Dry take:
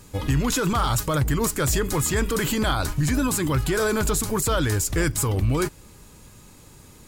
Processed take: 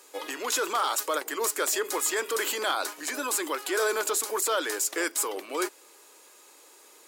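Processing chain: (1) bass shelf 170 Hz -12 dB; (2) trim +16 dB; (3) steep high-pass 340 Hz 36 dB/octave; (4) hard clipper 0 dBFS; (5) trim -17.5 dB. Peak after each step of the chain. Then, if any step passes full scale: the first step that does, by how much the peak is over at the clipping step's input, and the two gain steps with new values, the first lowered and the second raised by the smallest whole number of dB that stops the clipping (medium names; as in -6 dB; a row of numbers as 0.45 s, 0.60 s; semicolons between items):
-13.5 dBFS, +2.5 dBFS, +4.0 dBFS, 0.0 dBFS, -17.5 dBFS; step 2, 4.0 dB; step 2 +12 dB, step 5 -13.5 dB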